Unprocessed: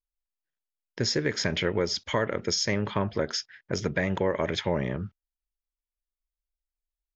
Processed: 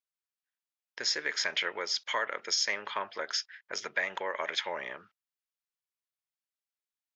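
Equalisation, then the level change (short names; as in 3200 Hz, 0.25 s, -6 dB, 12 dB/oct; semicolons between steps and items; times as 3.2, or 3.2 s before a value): HPF 1000 Hz 12 dB/oct; high shelf 6100 Hz -6 dB; +1.5 dB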